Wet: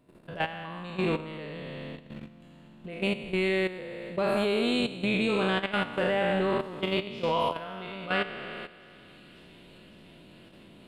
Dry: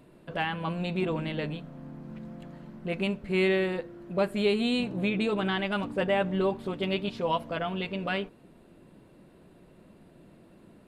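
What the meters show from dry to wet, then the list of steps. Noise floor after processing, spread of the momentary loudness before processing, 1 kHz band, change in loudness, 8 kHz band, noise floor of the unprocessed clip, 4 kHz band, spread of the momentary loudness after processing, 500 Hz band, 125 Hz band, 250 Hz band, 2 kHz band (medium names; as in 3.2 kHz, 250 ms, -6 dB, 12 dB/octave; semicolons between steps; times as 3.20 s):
-53 dBFS, 16 LU, +1.5 dB, 0.0 dB, no reading, -56 dBFS, +1.5 dB, 16 LU, 0.0 dB, -2.5 dB, -1.0 dB, +2.0 dB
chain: spectral sustain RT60 2.09 s; feedback echo behind a high-pass 554 ms, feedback 83%, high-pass 3.4 kHz, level -19 dB; level held to a coarse grid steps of 13 dB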